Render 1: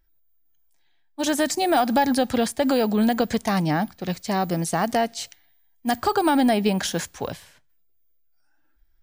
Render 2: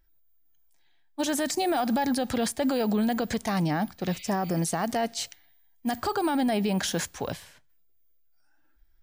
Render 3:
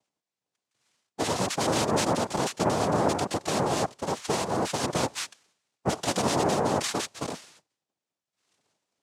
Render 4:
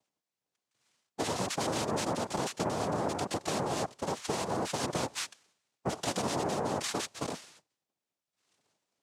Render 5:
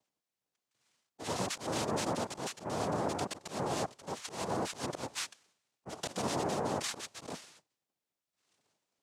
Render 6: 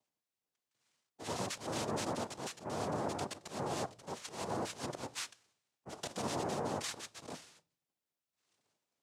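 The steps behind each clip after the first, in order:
spectral repair 4.12–4.57, 2000–4900 Hz both; limiter -19 dBFS, peak gain reduction 9 dB
noise vocoder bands 2
compressor 4:1, threshold -27 dBFS, peak gain reduction 7 dB; gain -2 dB
auto swell 0.142 s; gain -1.5 dB
reverb RT60 0.35 s, pre-delay 8 ms, DRR 15 dB; gain -3.5 dB

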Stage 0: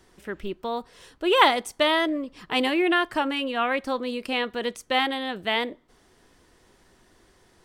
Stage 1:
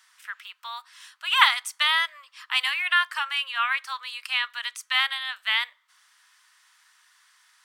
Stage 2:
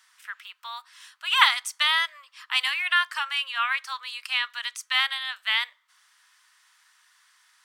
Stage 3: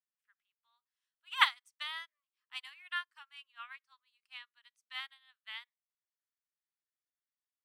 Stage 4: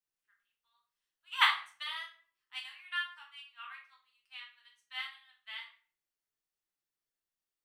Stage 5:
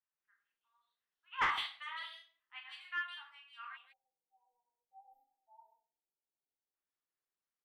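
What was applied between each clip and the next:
steep high-pass 1100 Hz 36 dB/oct; gain +3.5 dB
dynamic EQ 5800 Hz, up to +4 dB, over -42 dBFS, Q 1.2; gain -1 dB
upward expander 2.5:1, over -38 dBFS; gain -6.5 dB
shoebox room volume 42 m³, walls mixed, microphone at 0.84 m; gain -2.5 dB
spectral delete 3.77–6.74, 960–12000 Hz; three bands offset in time mids, lows, highs 0.13/0.16 s, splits 630/2900 Hz; overdrive pedal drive 14 dB, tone 1200 Hz, clips at -13.5 dBFS; gain -4.5 dB

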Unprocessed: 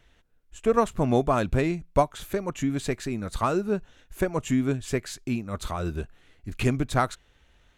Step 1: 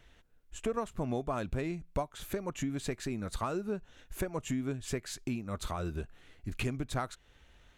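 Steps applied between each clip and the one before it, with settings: compressor 3:1, threshold -34 dBFS, peak gain reduction 14 dB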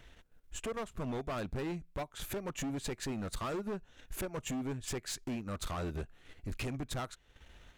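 transient shaper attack -4 dB, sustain -8 dB; in parallel at -2.5 dB: limiter -32.5 dBFS, peak gain reduction 10 dB; on the sum: hard clip -34 dBFS, distortion -8 dB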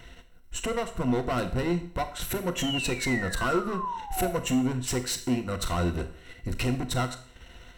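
painted sound fall, 2.56–4.31, 660–3400 Hz -44 dBFS; ripple EQ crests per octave 2, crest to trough 10 dB; Schroeder reverb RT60 0.54 s, combs from 28 ms, DRR 9 dB; gain +8 dB

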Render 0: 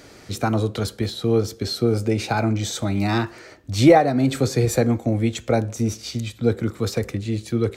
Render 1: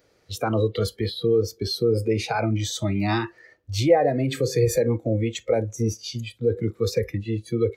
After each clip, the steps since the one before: limiter -13 dBFS, peak gain reduction 9.5 dB; thirty-one-band EQ 250 Hz -7 dB, 500 Hz +8 dB, 8000 Hz -5 dB; spectral noise reduction 18 dB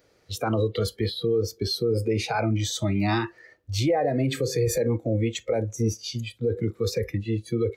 limiter -15.5 dBFS, peak gain reduction 9 dB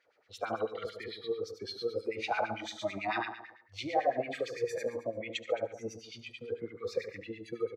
on a send: feedback echo 72 ms, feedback 52%, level -6 dB; on the sum: LFO band-pass sine 9 Hz 620–2700 Hz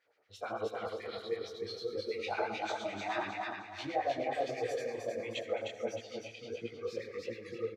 feedback echo 0.309 s, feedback 38%, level -3 dB; detuned doubles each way 52 cents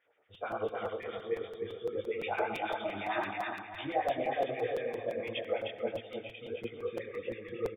brick-wall FIR low-pass 3700 Hz; crackling interface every 0.17 s, samples 256, repeat, from 0.34; gain +2 dB

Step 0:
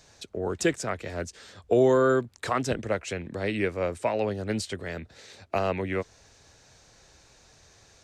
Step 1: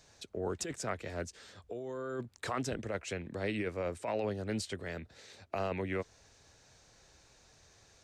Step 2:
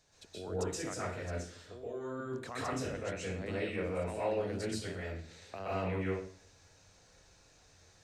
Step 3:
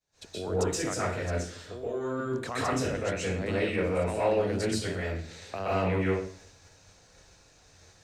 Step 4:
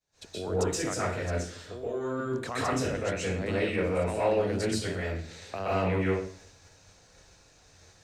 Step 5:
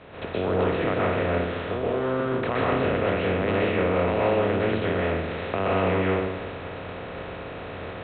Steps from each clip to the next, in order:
negative-ratio compressor -27 dBFS, ratio -1; gain -8 dB
reverb RT60 0.45 s, pre-delay 0.118 s, DRR -7.5 dB; gain -8.5 dB
expander -58 dBFS; in parallel at -10 dB: one-sided clip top -41 dBFS; on the sum: gain +6 dB
nothing audible
per-bin compression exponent 0.4; A-law 64 kbps 8000 Hz

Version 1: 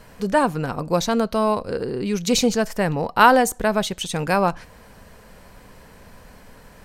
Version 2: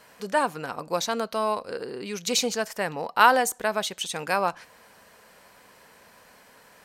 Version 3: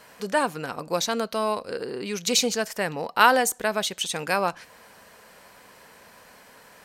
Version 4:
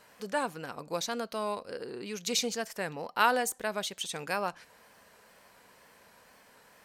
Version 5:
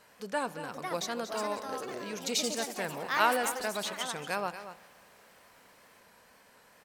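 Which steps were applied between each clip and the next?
HPF 720 Hz 6 dB/oct; gain -2 dB
dynamic EQ 930 Hz, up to -4 dB, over -37 dBFS, Q 0.96; gain +3 dB
wow and flutter 55 cents; gain -8 dB
echo 0.232 s -11.5 dB; echoes that change speed 0.57 s, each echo +4 st, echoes 3, each echo -6 dB; spring tank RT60 2 s, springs 35 ms, chirp 70 ms, DRR 18 dB; gain -1.5 dB

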